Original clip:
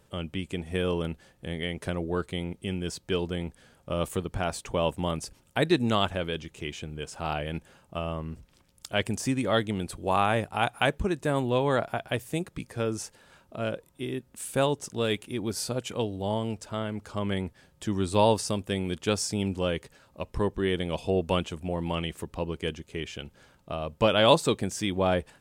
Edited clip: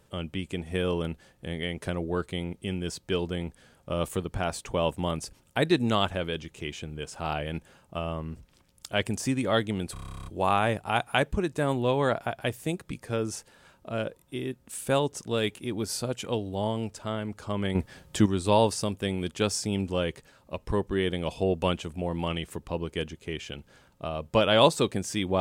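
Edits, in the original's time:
9.93 stutter 0.03 s, 12 plays
17.42–17.93 gain +8.5 dB

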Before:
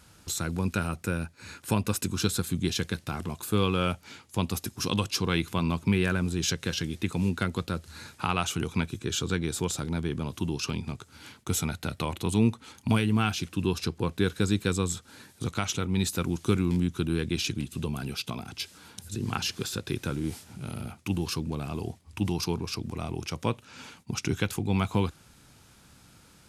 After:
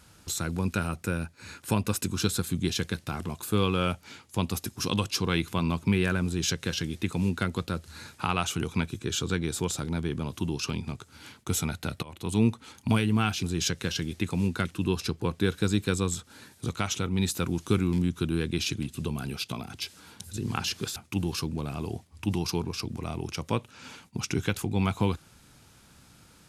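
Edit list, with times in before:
6.25–7.47 copy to 13.43
12.03–12.41 fade in, from -21 dB
19.74–20.9 cut

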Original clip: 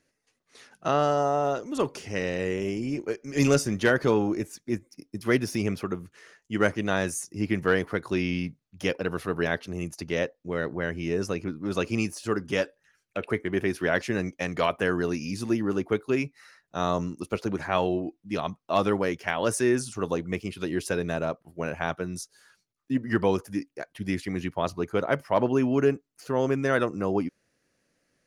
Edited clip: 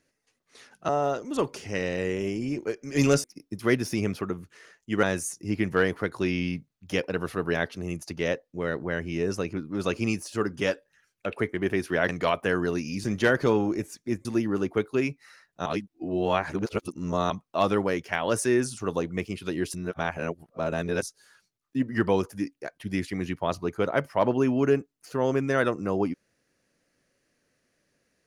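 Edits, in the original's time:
0.89–1.3 cut
3.65–4.86 move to 15.4
6.65–6.94 cut
14–14.45 cut
16.81–18.45 reverse
20.89–22.17 reverse

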